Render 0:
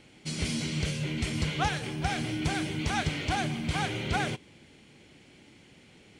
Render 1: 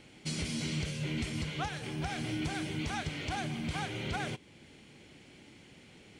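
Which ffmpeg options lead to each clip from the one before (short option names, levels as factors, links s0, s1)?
-af "alimiter=level_in=1.12:limit=0.0631:level=0:latency=1:release=458,volume=0.891"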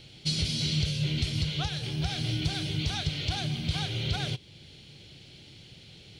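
-af "equalizer=f=125:t=o:w=1:g=5,equalizer=f=250:t=o:w=1:g=-11,equalizer=f=500:t=o:w=1:g=-3,equalizer=f=1000:t=o:w=1:g=-10,equalizer=f=2000:t=o:w=1:g=-9,equalizer=f=4000:t=o:w=1:g=10,equalizer=f=8000:t=o:w=1:g=-9,volume=2.37"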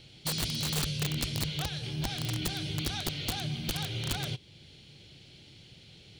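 -af "aeval=exprs='(mod(11.2*val(0)+1,2)-1)/11.2':c=same,volume=0.708"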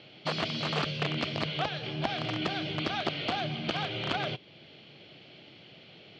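-af "highpass=220,equalizer=f=650:t=q:w=4:g=8,equalizer=f=1200:t=q:w=4:g=5,equalizer=f=3800:t=q:w=4:g=-6,lowpass=f=3800:w=0.5412,lowpass=f=3800:w=1.3066,volume=1.88"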